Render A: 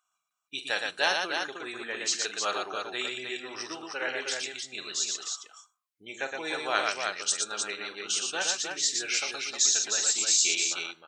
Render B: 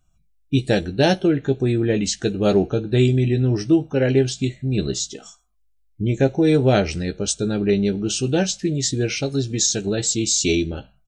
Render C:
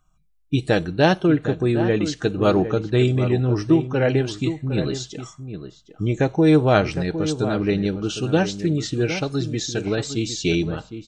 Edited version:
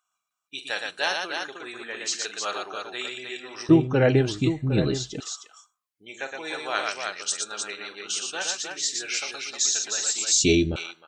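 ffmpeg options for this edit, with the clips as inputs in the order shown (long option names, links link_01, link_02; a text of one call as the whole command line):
ffmpeg -i take0.wav -i take1.wav -i take2.wav -filter_complex "[0:a]asplit=3[link_01][link_02][link_03];[link_01]atrim=end=3.692[link_04];[2:a]atrim=start=3.688:end=5.202[link_05];[link_02]atrim=start=5.198:end=10.322[link_06];[1:a]atrim=start=10.318:end=10.762[link_07];[link_03]atrim=start=10.758[link_08];[link_04][link_05]acrossfade=duration=0.004:curve1=hsin:curve2=hsin[link_09];[link_09][link_06]acrossfade=duration=0.004:curve1=hsin:curve2=hsin[link_10];[link_10][link_07]acrossfade=duration=0.004:curve1=hsin:curve2=hsin[link_11];[link_11][link_08]acrossfade=duration=0.004:curve1=hsin:curve2=hsin" out.wav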